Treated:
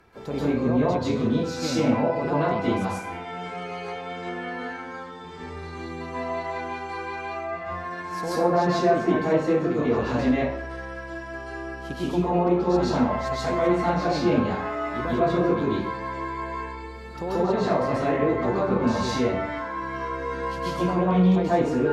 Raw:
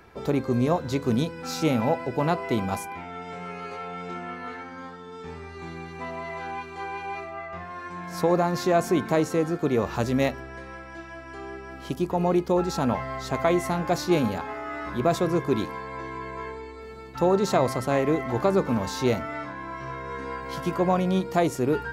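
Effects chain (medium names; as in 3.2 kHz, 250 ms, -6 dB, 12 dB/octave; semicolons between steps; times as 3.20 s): low-pass that closes with the level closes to 2.6 kHz, closed at -19 dBFS; peak limiter -16 dBFS, peak gain reduction 7.5 dB; plate-style reverb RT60 0.58 s, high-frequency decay 0.75×, pre-delay 120 ms, DRR -8.5 dB; trim -5.5 dB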